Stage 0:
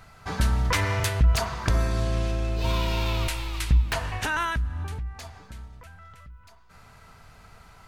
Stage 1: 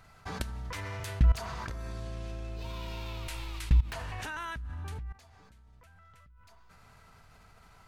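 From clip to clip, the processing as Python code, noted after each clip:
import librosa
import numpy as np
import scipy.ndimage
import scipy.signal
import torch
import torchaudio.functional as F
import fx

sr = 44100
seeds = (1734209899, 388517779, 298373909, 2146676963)

y = fx.level_steps(x, sr, step_db=19)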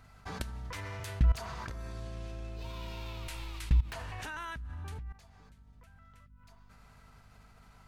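y = fx.add_hum(x, sr, base_hz=50, snr_db=24)
y = y * 10.0 ** (-2.5 / 20.0)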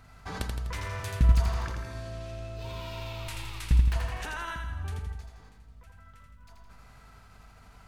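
y = fx.echo_feedback(x, sr, ms=83, feedback_pct=53, wet_db=-4.5)
y = y * 10.0 ** (3.0 / 20.0)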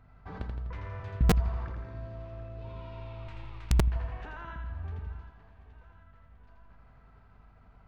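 y = fx.spacing_loss(x, sr, db_at_10k=41)
y = fx.echo_thinned(y, sr, ms=737, feedback_pct=57, hz=200.0, wet_db=-15.5)
y = (np.mod(10.0 ** (13.5 / 20.0) * y + 1.0, 2.0) - 1.0) / 10.0 ** (13.5 / 20.0)
y = y * 10.0 ** (-2.5 / 20.0)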